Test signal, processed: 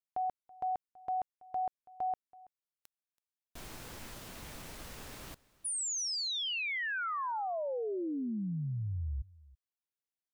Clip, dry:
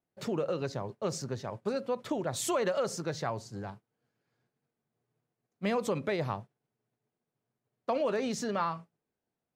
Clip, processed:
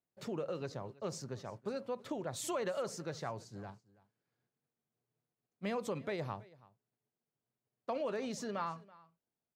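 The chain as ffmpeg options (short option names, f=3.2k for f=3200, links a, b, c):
-af "aecho=1:1:329:0.0794,volume=-7dB"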